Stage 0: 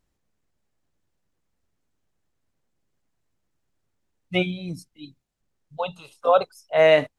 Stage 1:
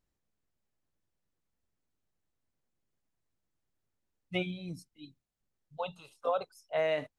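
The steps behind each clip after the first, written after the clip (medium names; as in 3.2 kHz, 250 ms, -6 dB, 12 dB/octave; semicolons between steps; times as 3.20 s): compression, threshold -18 dBFS, peak gain reduction 7 dB; trim -8.5 dB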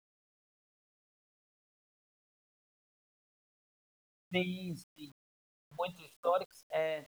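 fade out at the end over 0.57 s; word length cut 10-bit, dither none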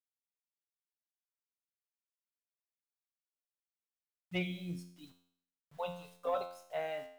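feedback comb 88 Hz, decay 0.63 s, harmonics all, mix 80%; saturation -29.5 dBFS, distortion -23 dB; trim +6.5 dB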